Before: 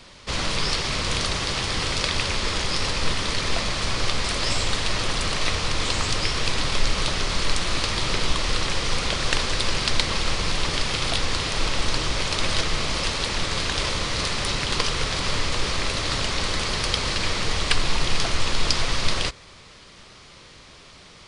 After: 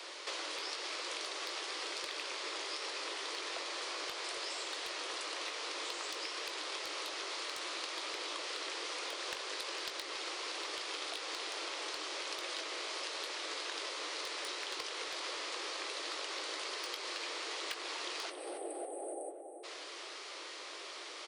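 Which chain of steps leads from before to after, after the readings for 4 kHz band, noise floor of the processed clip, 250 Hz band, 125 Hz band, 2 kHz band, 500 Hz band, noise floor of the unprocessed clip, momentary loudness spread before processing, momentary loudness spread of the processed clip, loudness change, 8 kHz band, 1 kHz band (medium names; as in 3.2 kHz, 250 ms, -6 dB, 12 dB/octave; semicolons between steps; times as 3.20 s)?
-14.5 dB, -47 dBFS, -19.5 dB, under -40 dB, -14.0 dB, -13.0 dB, -47 dBFS, 2 LU, 4 LU, -15.0 dB, -14.5 dB, -13.5 dB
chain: steep high-pass 310 Hz 96 dB/octave; spectral selection erased 18.30–19.64 s, 850–8000 Hz; compression 5:1, threshold -42 dBFS, peak gain reduction 22 dB; wavefolder -28.5 dBFS; doubling 20 ms -10.5 dB; on a send: filtered feedback delay 277 ms, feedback 56%, low-pass 2.4 kHz, level -8 dB; on the sum: trim +1 dB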